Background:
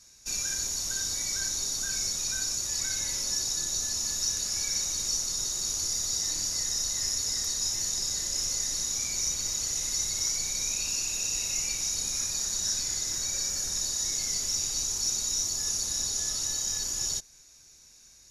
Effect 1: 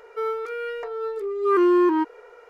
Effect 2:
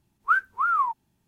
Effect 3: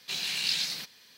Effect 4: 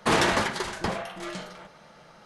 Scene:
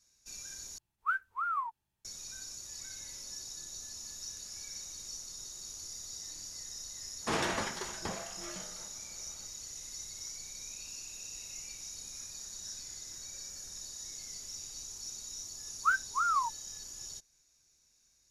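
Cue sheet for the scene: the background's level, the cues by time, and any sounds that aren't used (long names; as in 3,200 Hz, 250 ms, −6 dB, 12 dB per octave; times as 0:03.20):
background −14.5 dB
0:00.78: overwrite with 2 −9.5 dB + parametric band 240 Hz −12.5 dB 1.8 octaves
0:07.21: mix in 4 −10.5 dB
0:15.57: mix in 2 −6.5 dB + linearly interpolated sample-rate reduction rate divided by 2×
not used: 1, 3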